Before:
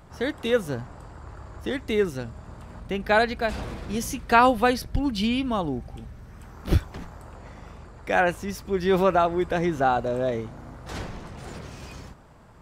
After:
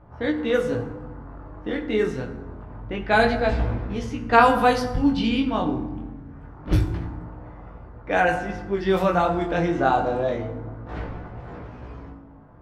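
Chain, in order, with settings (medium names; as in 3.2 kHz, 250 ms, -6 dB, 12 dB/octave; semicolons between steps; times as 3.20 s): level-controlled noise filter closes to 1.2 kHz, open at -16 dBFS; 3.13–3.82 s: bass shelf 330 Hz +6 dB; FDN reverb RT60 1.1 s, low-frequency decay 1.6×, high-frequency decay 0.55×, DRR 5.5 dB; chorus 0.26 Hz, delay 16 ms, depth 7.2 ms; trim +3.5 dB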